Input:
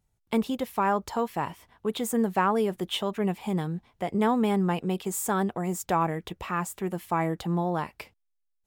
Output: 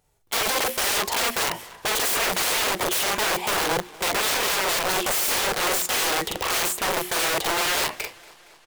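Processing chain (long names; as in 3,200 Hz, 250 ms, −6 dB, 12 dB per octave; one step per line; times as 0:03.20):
flanger 0.86 Hz, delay 6.5 ms, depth 3.7 ms, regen +75%
mains-hum notches 60/120/180/240/300/360 Hz
double-tracking delay 42 ms −3.5 dB
in parallel at +1.5 dB: brickwall limiter −23.5 dBFS, peak gain reduction 10 dB
on the sum: wrap-around overflow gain 27 dB
low shelf with overshoot 310 Hz −7.5 dB, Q 1.5
feedback echo with a swinging delay time 233 ms, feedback 65%, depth 64 cents, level −23 dB
level +8.5 dB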